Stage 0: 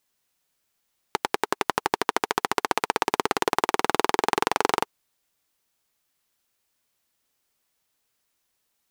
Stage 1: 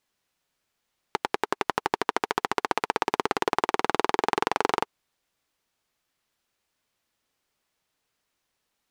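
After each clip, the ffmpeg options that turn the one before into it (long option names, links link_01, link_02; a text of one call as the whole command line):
ffmpeg -i in.wav -filter_complex "[0:a]asplit=2[link_01][link_02];[link_02]alimiter=limit=-11dB:level=0:latency=1:release=92,volume=-3dB[link_03];[link_01][link_03]amix=inputs=2:normalize=0,highshelf=frequency=7200:gain=-11.5,volume=-3.5dB" out.wav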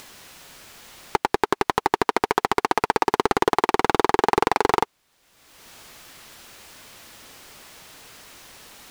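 ffmpeg -i in.wav -filter_complex "[0:a]asplit=2[link_01][link_02];[link_02]acompressor=mode=upward:threshold=-28dB:ratio=2.5,volume=0dB[link_03];[link_01][link_03]amix=inputs=2:normalize=0,asoftclip=type=tanh:threshold=-10.5dB,volume=4.5dB" out.wav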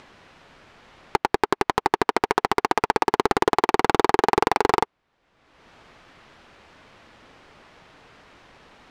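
ffmpeg -i in.wav -af "adynamicsmooth=sensitivity=3:basefreq=2400" out.wav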